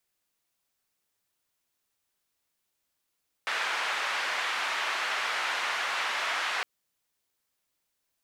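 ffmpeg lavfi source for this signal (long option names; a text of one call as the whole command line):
ffmpeg -f lavfi -i "anoisesrc=color=white:duration=3.16:sample_rate=44100:seed=1,highpass=frequency=1000,lowpass=frequency=2000,volume=-13dB" out.wav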